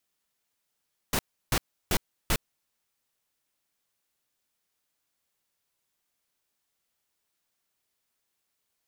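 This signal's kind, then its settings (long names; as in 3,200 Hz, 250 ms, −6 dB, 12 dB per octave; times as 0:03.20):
noise bursts pink, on 0.06 s, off 0.33 s, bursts 4, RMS −24.5 dBFS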